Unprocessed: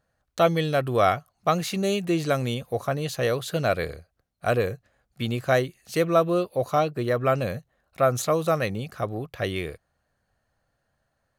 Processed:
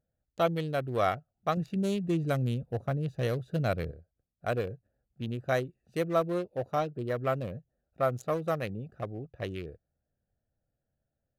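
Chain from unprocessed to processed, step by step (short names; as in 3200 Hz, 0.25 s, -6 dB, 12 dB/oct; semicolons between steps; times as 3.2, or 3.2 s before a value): Wiener smoothing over 41 samples; 1.57–3.91 tone controls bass +7 dB, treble +2 dB; gain -6.5 dB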